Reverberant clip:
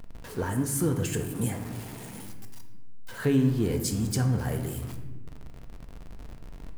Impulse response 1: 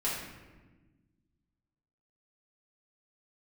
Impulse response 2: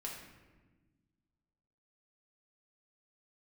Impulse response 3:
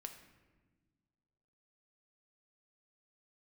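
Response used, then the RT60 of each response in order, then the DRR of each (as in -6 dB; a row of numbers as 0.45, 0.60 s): 3; 1.3, 1.3, 1.4 s; -8.0, -3.0, 5.0 dB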